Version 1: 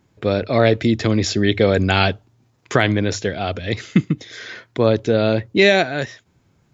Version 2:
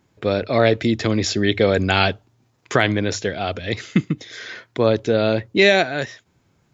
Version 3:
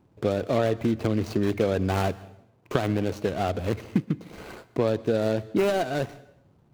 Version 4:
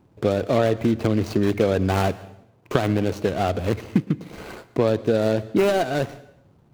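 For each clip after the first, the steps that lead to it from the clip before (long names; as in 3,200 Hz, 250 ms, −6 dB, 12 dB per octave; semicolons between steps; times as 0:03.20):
low-shelf EQ 260 Hz −4 dB
running median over 25 samples; downward compressor 3 to 1, threshold −25 dBFS, peak gain reduction 10.5 dB; dense smooth reverb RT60 0.76 s, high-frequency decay 0.9×, pre-delay 110 ms, DRR 19 dB; level +2.5 dB
feedback echo with a swinging delay time 111 ms, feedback 31%, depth 116 cents, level −24 dB; level +4 dB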